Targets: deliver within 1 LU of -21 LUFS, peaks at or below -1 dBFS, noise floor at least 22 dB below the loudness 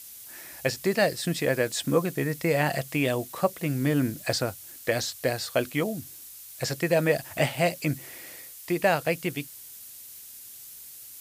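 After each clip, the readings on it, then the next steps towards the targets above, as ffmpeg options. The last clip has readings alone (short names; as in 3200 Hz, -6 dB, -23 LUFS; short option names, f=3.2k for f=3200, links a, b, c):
noise floor -45 dBFS; noise floor target -49 dBFS; loudness -27.0 LUFS; peak -9.5 dBFS; loudness target -21.0 LUFS
-> -af "afftdn=nr=6:nf=-45"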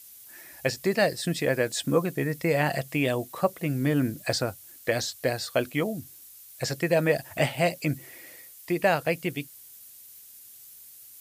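noise floor -49 dBFS; noise floor target -50 dBFS
-> -af "afftdn=nr=6:nf=-49"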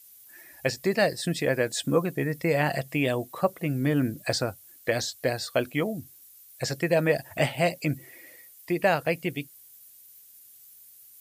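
noise floor -53 dBFS; loudness -27.5 LUFS; peak -9.5 dBFS; loudness target -21.0 LUFS
-> -af "volume=6.5dB"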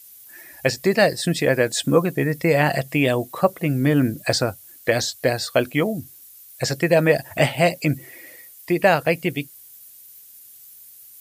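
loudness -21.0 LUFS; peak -3.0 dBFS; noise floor -46 dBFS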